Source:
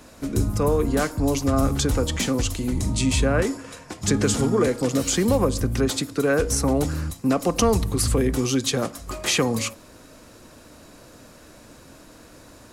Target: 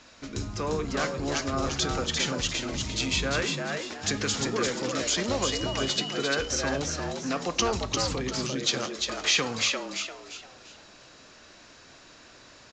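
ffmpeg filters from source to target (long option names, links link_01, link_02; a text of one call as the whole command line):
ffmpeg -i in.wav -filter_complex "[0:a]lowpass=5300,tiltshelf=frequency=1100:gain=-7.5,asettb=1/sr,asplit=3[link_01][link_02][link_03];[link_01]atrim=end=5.444[link_04];[link_02]atrim=start=5.44:end=6.13,asetpts=PTS-STARTPTS,afade=type=in:duration=0.004:curve=qsin,afade=type=out:start_time=0.686:duration=0.004:curve=qsin,aeval=exprs='val(0)+0.0282*sin(2*PI*2900*n/s)':channel_layout=same[link_05];[link_03]atrim=start=6.126[link_06];[link_04][link_05]acrossfade=duration=0.004:curve1=hsin:curve2=qsin[link_07];[link_07][link_06]acrossfade=duration=0.004:curve1=qsin:curve2=hsin,asettb=1/sr,asplit=3[link_08][link_09][link_10];[link_08]atrim=end=8.144[link_11];[link_09]atrim=start=8.14:end=8.62,asetpts=PTS-STARTPTS,afade=type=in:duration=0.004:curve=qsin,afade=type=out:start_time=0.476:duration=0.004:curve=qsin,acrossover=split=370[link_12][link_13];[link_13]acompressor=threshold=-30dB:ratio=4[link_14];[link_12][link_14]amix=inputs=2:normalize=0[link_15];[link_10]atrim=start=8.616[link_16];[link_11][link_15]acrossfade=duration=0.004:curve1=hsin:curve2=qsin[link_17];[link_17][link_16]acrossfade=duration=0.004:curve1=qsin:curve2=hsin,flanger=delay=7.9:depth=4:regen=-85:speed=0.47:shape=triangular,asplit=5[link_18][link_19][link_20][link_21][link_22];[link_19]adelay=347,afreqshift=91,volume=-4dB[link_23];[link_20]adelay=694,afreqshift=182,volume=-13.6dB[link_24];[link_21]adelay=1041,afreqshift=273,volume=-23.3dB[link_25];[link_22]adelay=1388,afreqshift=364,volume=-32.9dB[link_26];[link_18][link_23][link_24][link_25][link_26]amix=inputs=5:normalize=0" -ar 16000 -c:a pcm_mulaw out.wav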